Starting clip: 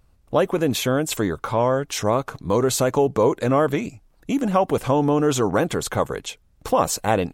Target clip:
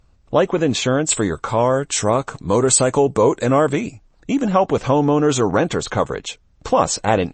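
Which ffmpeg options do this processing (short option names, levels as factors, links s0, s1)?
-filter_complex "[0:a]asettb=1/sr,asplit=3[s0][s1][s2];[s0]atrim=end=1.094[s3];[s1]atrim=start=1.09:end=3.79,asetpts=PTS-STARTPTS,afade=t=in:d=0.004:c=qsin,afade=t=out:st=2.696:d=0.004:c=qsin,equalizer=f=8000:t=o:w=0.28:g=13[s4];[s2]atrim=start=3.786[s5];[s3][s4]acrossfade=d=0.004:c1=hsin:c2=qsin[s6];[s6][s5]acrossfade=d=0.004:c1=qsin:c2=hsin,volume=1.5" -ar 24000 -c:a libmp3lame -b:a 32k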